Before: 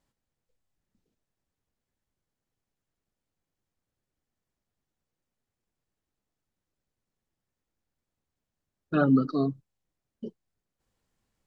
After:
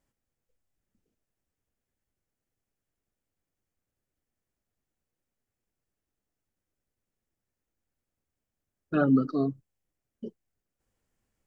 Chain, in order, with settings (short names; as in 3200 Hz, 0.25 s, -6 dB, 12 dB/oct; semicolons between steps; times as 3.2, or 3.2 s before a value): fifteen-band EQ 160 Hz -3 dB, 1000 Hz -4 dB, 4000 Hz -7 dB